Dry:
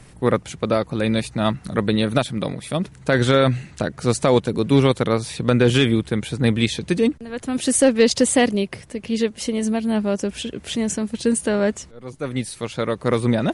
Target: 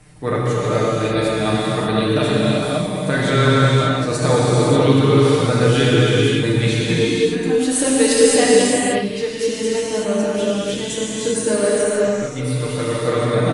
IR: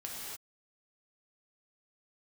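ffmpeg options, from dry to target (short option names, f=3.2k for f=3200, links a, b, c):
-filter_complex "[0:a]aecho=1:1:6.6:0.59[a];[1:a]atrim=start_sample=2205,asetrate=22491,aresample=44100[b];[a][b]afir=irnorm=-1:irlink=0,volume=-3dB"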